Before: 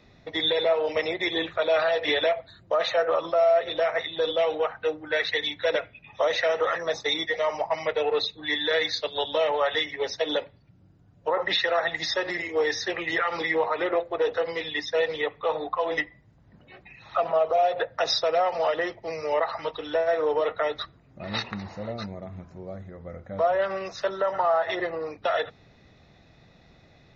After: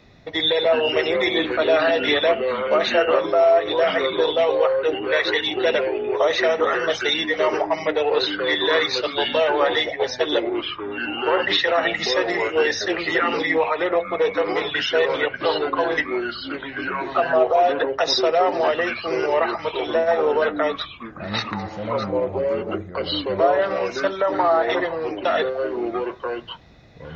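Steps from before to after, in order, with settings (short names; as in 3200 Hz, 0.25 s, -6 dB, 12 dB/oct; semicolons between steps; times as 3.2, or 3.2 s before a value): echoes that change speed 0.29 s, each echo -4 st, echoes 2, each echo -6 dB; gain +4.5 dB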